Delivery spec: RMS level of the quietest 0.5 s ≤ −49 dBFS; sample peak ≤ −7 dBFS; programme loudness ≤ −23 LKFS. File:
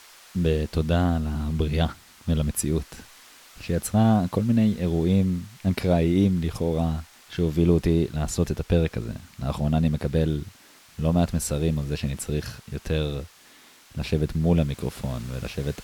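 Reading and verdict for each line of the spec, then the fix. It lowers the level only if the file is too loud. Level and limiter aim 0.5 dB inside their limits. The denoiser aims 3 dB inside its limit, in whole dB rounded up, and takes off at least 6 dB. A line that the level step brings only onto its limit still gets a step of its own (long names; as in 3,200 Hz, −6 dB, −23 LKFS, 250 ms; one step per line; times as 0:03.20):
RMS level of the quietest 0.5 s −52 dBFS: in spec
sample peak −9.0 dBFS: in spec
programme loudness −25.0 LKFS: in spec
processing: no processing needed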